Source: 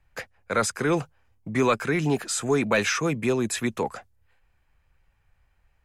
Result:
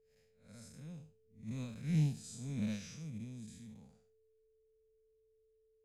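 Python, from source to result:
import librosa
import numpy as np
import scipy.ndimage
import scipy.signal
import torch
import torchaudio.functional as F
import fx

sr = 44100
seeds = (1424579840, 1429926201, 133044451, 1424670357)

y = fx.spec_blur(x, sr, span_ms=176.0)
y = fx.doppler_pass(y, sr, speed_mps=11, closest_m=11.0, pass_at_s=2.13)
y = fx.curve_eq(y, sr, hz=(220.0, 370.0, 550.0, 1200.0, 4500.0), db=(0, -26, -14, -24, -5))
y = y + 10.0 ** (-60.0 / 20.0) * np.sin(2.0 * np.pi * 440.0 * np.arange(len(y)) / sr)
y = fx.upward_expand(y, sr, threshold_db=-36.0, expansion=2.5)
y = y * 10.0 ** (1.0 / 20.0)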